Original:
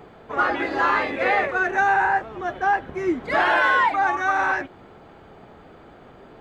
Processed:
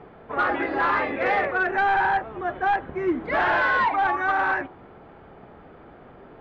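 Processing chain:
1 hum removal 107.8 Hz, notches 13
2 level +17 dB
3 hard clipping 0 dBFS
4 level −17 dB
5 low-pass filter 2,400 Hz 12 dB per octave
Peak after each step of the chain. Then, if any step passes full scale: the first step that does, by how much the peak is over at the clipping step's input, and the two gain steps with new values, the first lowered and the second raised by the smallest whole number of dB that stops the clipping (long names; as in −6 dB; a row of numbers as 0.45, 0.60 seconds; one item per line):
−8.0, +9.0, 0.0, −17.0, −16.5 dBFS
step 2, 9.0 dB
step 2 +8 dB, step 4 −8 dB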